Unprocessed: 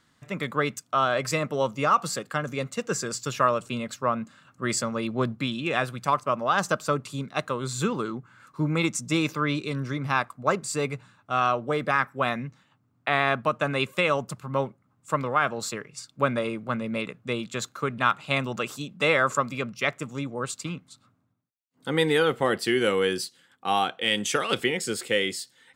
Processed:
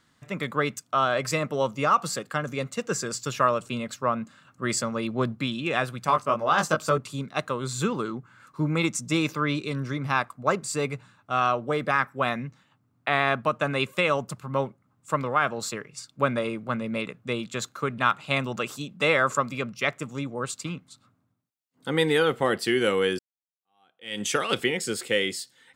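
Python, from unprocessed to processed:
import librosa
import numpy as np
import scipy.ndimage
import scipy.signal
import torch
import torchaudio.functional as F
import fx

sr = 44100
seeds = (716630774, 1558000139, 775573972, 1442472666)

y = fx.doubler(x, sr, ms=19.0, db=-4, at=(6.07, 6.98))
y = fx.edit(y, sr, fx.fade_in_span(start_s=23.19, length_s=1.03, curve='exp'), tone=tone)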